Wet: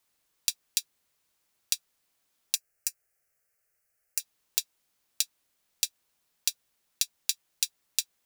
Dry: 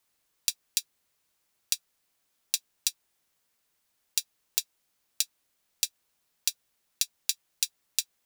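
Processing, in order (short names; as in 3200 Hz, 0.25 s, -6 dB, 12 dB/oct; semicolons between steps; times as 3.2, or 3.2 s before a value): 2.55–4.2 fixed phaser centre 970 Hz, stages 6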